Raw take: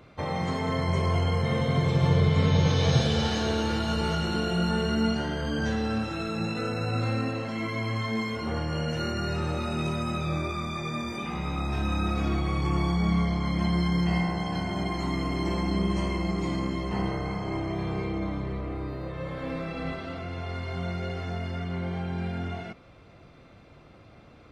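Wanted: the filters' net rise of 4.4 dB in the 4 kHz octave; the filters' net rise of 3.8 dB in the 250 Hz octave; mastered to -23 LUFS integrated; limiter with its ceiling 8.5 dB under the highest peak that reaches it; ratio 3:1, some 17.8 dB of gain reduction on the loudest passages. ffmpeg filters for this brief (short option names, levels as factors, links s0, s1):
-af "equalizer=f=250:t=o:g=5.5,equalizer=f=4000:t=o:g=5.5,acompressor=threshold=0.00794:ratio=3,volume=10.6,alimiter=limit=0.2:level=0:latency=1"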